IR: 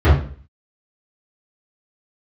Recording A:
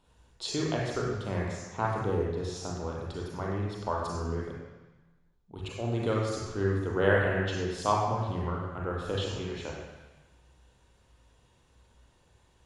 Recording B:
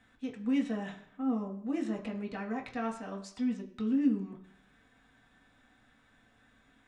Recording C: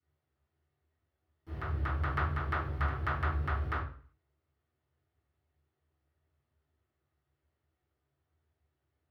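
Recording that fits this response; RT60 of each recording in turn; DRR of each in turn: C; 1.2 s, 0.65 s, 0.45 s; -2.5 dB, 0.5 dB, -13.0 dB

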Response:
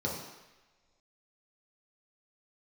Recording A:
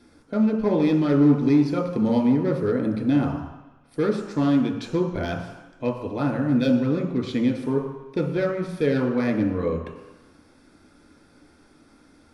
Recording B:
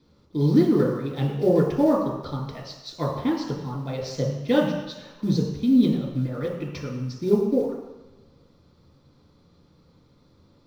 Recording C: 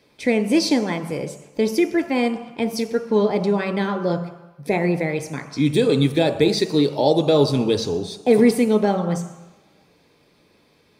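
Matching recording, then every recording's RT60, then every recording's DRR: B; no single decay rate, no single decay rate, no single decay rate; 0.5 dB, -4.0 dB, 6.0 dB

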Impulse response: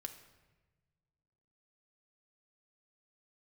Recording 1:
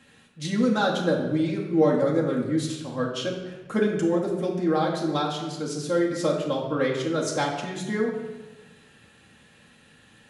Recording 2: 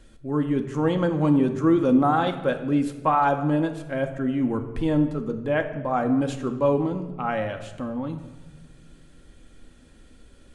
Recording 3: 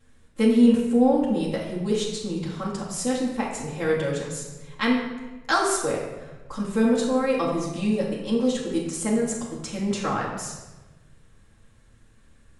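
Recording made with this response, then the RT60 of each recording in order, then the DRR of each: 2; 1.2 s, 1.2 s, 1.2 s; -3.5 dB, 5.5 dB, -9.5 dB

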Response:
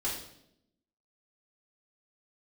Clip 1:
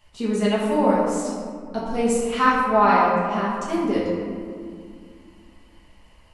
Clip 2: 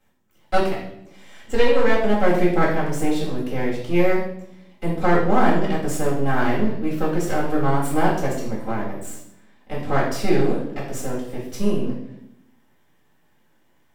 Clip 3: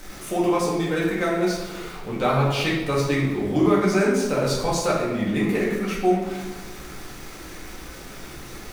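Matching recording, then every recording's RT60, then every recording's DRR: 2; 2.1 s, 0.75 s, 1.2 s; -8.5 dB, -6.5 dB, -6.0 dB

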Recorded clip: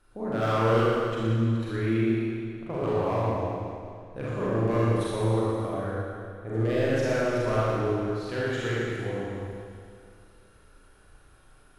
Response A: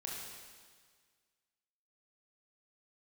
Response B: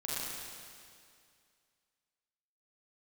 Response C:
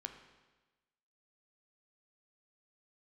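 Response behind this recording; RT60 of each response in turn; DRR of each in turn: B; 1.7 s, 2.3 s, 1.2 s; -3.5 dB, -8.5 dB, 5.5 dB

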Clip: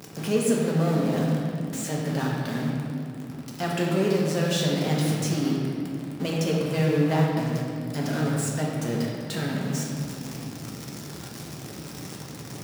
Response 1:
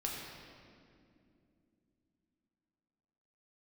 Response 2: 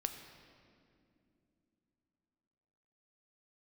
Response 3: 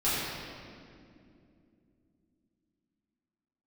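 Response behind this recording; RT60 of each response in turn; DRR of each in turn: 1; 2.6 s, 2.7 s, 2.5 s; -3.0 dB, 6.0 dB, -12.5 dB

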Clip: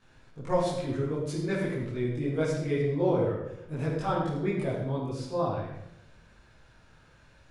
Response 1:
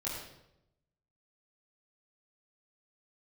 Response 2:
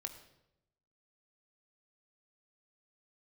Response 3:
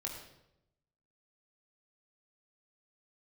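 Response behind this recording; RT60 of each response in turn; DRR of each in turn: 1; 0.85 s, 0.85 s, 0.85 s; -9.0 dB, 6.5 dB, -1.5 dB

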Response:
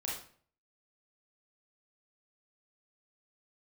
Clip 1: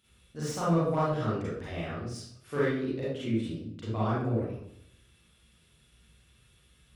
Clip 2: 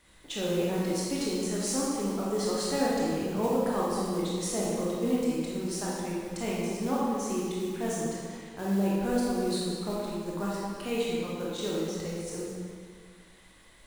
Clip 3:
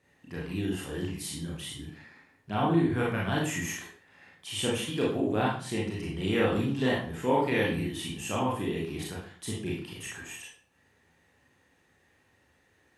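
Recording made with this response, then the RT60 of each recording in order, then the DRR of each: 3; 0.70 s, 2.0 s, 0.50 s; -9.0 dB, -6.0 dB, -5.0 dB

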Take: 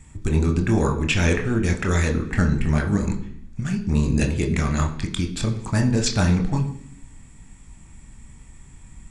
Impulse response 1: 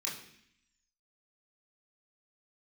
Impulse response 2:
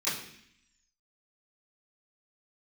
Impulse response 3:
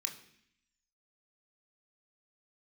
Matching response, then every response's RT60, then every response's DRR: 3; 0.65 s, 0.65 s, 0.65 s; -5.5 dB, -14.5 dB, 3.0 dB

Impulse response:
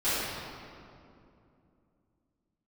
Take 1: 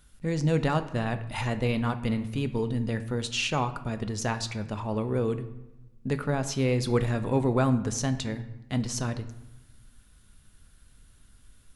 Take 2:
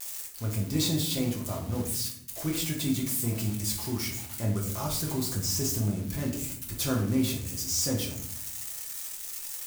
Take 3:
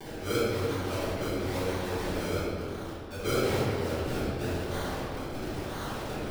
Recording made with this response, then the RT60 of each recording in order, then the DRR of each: 3; 1.0 s, 0.65 s, 2.6 s; 9.0 dB, -1.5 dB, -17.5 dB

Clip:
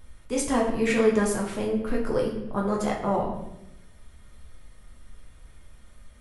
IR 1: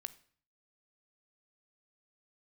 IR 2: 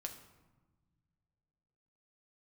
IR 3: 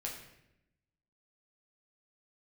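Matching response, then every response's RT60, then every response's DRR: 3; 0.50 s, 1.3 s, 0.85 s; 12.5 dB, 3.5 dB, -2.5 dB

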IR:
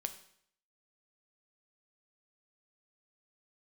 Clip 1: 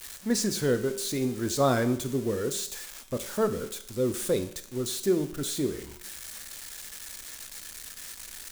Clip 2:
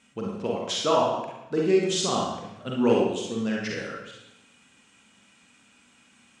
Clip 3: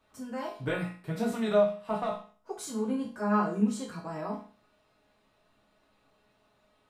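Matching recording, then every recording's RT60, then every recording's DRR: 1; 0.65 s, 0.90 s, 0.45 s; 8.0 dB, -3.0 dB, -6.0 dB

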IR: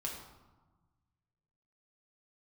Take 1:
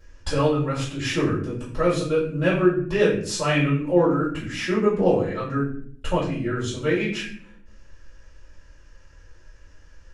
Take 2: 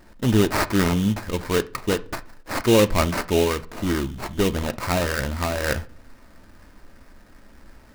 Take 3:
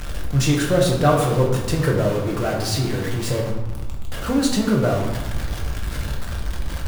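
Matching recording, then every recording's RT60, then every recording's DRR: 3; 0.55 s, 0.45 s, 1.3 s; -11.0 dB, 9.0 dB, -2.0 dB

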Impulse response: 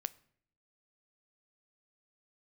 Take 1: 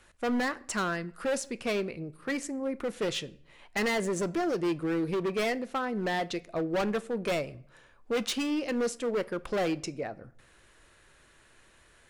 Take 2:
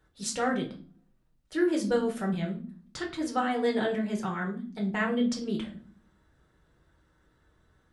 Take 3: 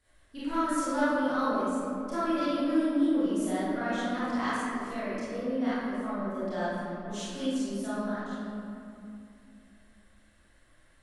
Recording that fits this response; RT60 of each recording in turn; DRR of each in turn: 1; 0.60 s, 0.45 s, 2.7 s; 15.0 dB, -0.5 dB, -12.0 dB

